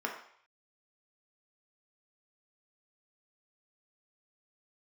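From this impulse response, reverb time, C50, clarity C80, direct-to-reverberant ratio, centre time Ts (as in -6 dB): 0.60 s, 6.0 dB, 9.5 dB, 0.0 dB, 26 ms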